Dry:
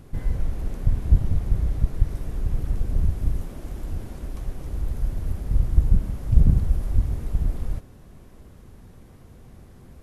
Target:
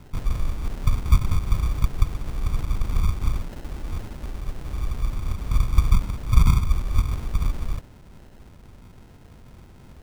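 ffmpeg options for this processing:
-filter_complex "[0:a]acrossover=split=200|3000[s0][s1][s2];[s1]acompressor=threshold=0.02:ratio=2[s3];[s0][s3][s2]amix=inputs=3:normalize=0,acrusher=samples=38:mix=1:aa=0.000001"

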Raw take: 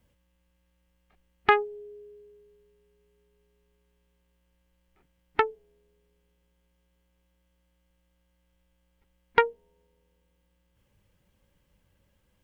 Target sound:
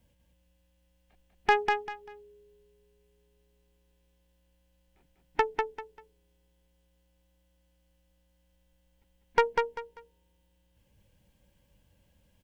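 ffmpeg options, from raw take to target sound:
-af "equalizer=f=400:t=o:w=0.33:g=-5,equalizer=f=1250:t=o:w=0.33:g=-11,equalizer=f=2000:t=o:w=0.33:g=-4,aeval=exprs='(tanh(5.01*val(0)+0.4)-tanh(0.4))/5.01':c=same,aecho=1:1:196|392|588:0.631|0.158|0.0394,volume=1.33"

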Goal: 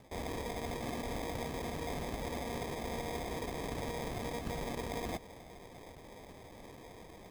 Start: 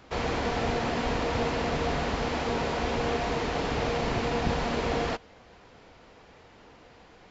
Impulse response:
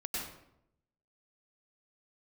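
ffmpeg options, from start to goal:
-af "areverse,acompressor=threshold=0.01:ratio=4,areverse,acrusher=samples=31:mix=1:aa=0.000001,volume=1.19"

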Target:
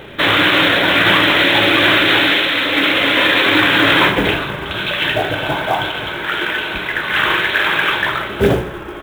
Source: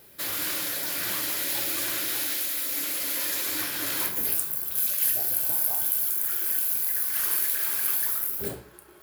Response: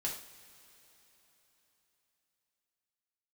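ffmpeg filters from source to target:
-filter_complex "[0:a]aresample=8000,aresample=44100,bandreject=f=181.1:t=h:w=4,bandreject=f=362.2:t=h:w=4,bandreject=f=543.3:t=h:w=4,asplit=5[s0][s1][s2][s3][s4];[s1]adelay=168,afreqshift=-38,volume=0.1[s5];[s2]adelay=336,afreqshift=-76,volume=0.0562[s6];[s3]adelay=504,afreqshift=-114,volume=0.0313[s7];[s4]adelay=672,afreqshift=-152,volume=0.0176[s8];[s0][s5][s6][s7][s8]amix=inputs=5:normalize=0,acrusher=bits=6:mode=log:mix=0:aa=0.000001,alimiter=level_in=17.8:limit=0.891:release=50:level=0:latency=1,volume=0.891"

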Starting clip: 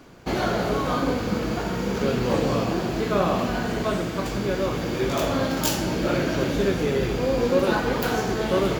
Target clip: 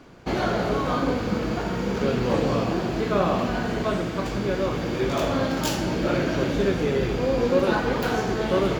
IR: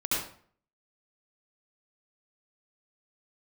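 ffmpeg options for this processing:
-af "highshelf=f=8200:g=-10.5"

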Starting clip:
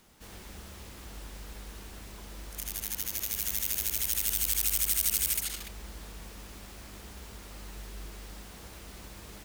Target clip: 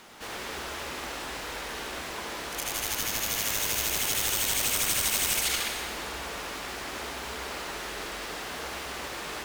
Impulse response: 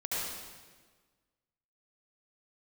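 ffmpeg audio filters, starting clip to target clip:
-filter_complex "[0:a]bandreject=f=50:t=h:w=6,bandreject=f=100:t=h:w=6,bandreject=f=150:t=h:w=6,bandreject=f=200:t=h:w=6,asplit=2[s0][s1];[s1]highpass=f=720:p=1,volume=10,asoftclip=type=tanh:threshold=0.282[s2];[s0][s2]amix=inputs=2:normalize=0,lowpass=f=2700:p=1,volume=0.501,asplit=2[s3][s4];[1:a]atrim=start_sample=2205,asetrate=38367,aresample=44100[s5];[s4][s5]afir=irnorm=-1:irlink=0,volume=0.398[s6];[s3][s6]amix=inputs=2:normalize=0"

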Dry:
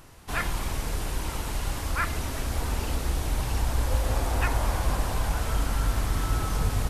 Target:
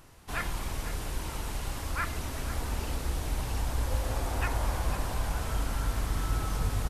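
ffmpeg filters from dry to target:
-af "aecho=1:1:498:0.237,volume=0.596"

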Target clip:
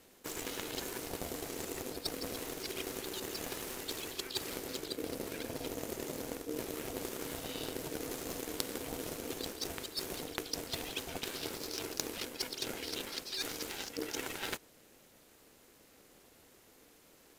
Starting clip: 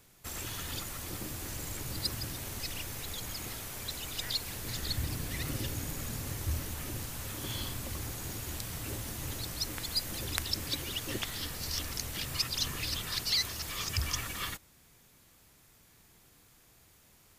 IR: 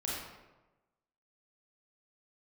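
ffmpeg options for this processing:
-af "highshelf=f=6300:g=-3.5,areverse,acompressor=threshold=0.01:ratio=12,areverse,aeval=exprs='0.119*(cos(1*acos(clip(val(0)/0.119,-1,1)))-cos(1*PI/2))+0.0422*(cos(2*acos(clip(val(0)/0.119,-1,1)))-cos(2*PI/2))+0.0299*(cos(4*acos(clip(val(0)/0.119,-1,1)))-cos(4*PI/2))+0.0376*(cos(5*acos(clip(val(0)/0.119,-1,1)))-cos(5*PI/2))+0.0376*(cos(7*acos(clip(val(0)/0.119,-1,1)))-cos(7*PI/2))':c=same,aeval=exprs='val(0)*sin(2*PI*380*n/s)':c=same,volume=4.22"

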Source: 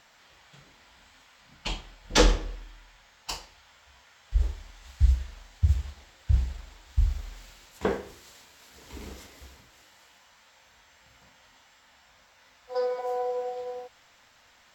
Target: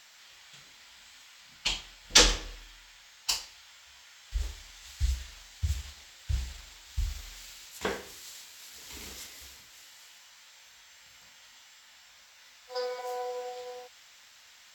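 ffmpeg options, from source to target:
-af "tiltshelf=f=1500:g=-8.5"

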